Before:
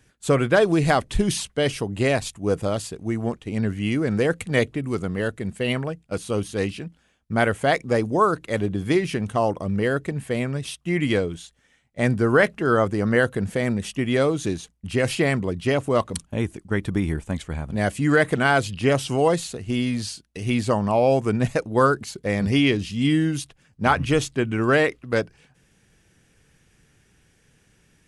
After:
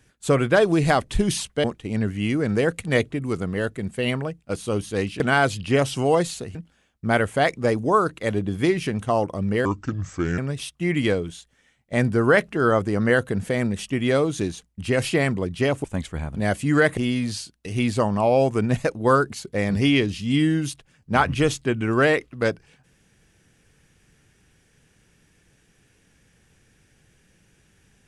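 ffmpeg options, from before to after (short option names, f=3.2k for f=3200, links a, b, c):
-filter_complex "[0:a]asplit=8[a][b][c][d][e][f][g][h];[a]atrim=end=1.642[i];[b]atrim=start=3.258:end=6.822[j];[c]atrim=start=18.328:end=19.682[k];[d]atrim=start=6.818:end=9.924[l];[e]atrim=start=9.92:end=10.44,asetpts=PTS-STARTPTS,asetrate=31311,aresample=44100[m];[f]atrim=start=10.436:end=15.902[n];[g]atrim=start=17.198:end=18.332[o];[h]atrim=start=19.678[p];[i][j]acrossfade=d=0.004:c1=hsin:c2=hsin[q];[q][k]acrossfade=d=0.004:c1=hsin:c2=hsin[r];[r][l]acrossfade=d=0.004:c1=hsin:c2=hsin[s];[s][m]acrossfade=d=0.004:c1=hsin:c2=hsin[t];[t][n]acrossfade=d=0.004:c1=hsin:c2=hsin[u];[u][o]acrossfade=d=0.004:c1=hsin:c2=hsin[v];[v][p]acrossfade=d=0.004:c1=hsin:c2=hsin"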